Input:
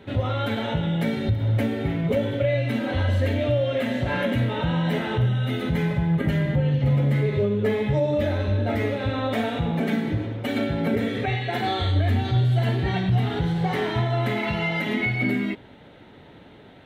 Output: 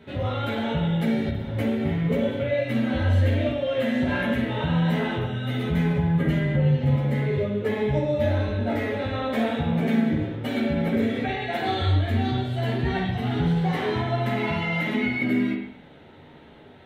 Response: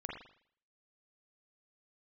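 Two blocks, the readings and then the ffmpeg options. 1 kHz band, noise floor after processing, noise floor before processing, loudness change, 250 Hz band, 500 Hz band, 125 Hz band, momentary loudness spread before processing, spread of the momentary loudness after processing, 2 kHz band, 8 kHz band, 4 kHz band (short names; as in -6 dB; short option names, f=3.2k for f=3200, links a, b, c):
-0.5 dB, -48 dBFS, -48 dBFS, -0.5 dB, +1.0 dB, -1.0 dB, -2.0 dB, 4 LU, 5 LU, -0.5 dB, n/a, -1.5 dB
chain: -filter_complex "[0:a]flanger=delay=4.5:depth=3.9:regen=-47:speed=1.4:shape=sinusoidal,asplit=2[a][b];[1:a]atrim=start_sample=2205,adelay=13[c];[b][c]afir=irnorm=-1:irlink=0,volume=1dB[d];[a][d]amix=inputs=2:normalize=0"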